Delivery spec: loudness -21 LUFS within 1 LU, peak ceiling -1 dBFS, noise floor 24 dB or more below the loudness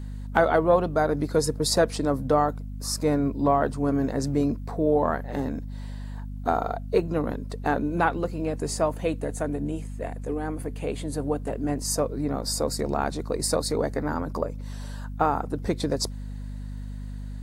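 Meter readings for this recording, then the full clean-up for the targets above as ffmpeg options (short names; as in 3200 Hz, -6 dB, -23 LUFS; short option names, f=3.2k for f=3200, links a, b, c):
hum 50 Hz; harmonics up to 250 Hz; hum level -32 dBFS; loudness -26.5 LUFS; peak -4.5 dBFS; loudness target -21.0 LUFS
-> -af "bandreject=f=50:t=h:w=4,bandreject=f=100:t=h:w=4,bandreject=f=150:t=h:w=4,bandreject=f=200:t=h:w=4,bandreject=f=250:t=h:w=4"
-af "volume=5.5dB,alimiter=limit=-1dB:level=0:latency=1"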